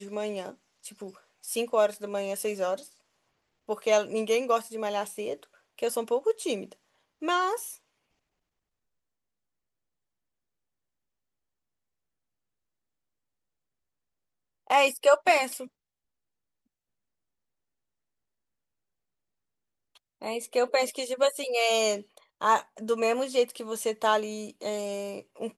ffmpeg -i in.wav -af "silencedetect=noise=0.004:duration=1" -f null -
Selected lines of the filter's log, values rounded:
silence_start: 7.77
silence_end: 14.67 | silence_duration: 6.90
silence_start: 15.67
silence_end: 19.96 | silence_duration: 4.29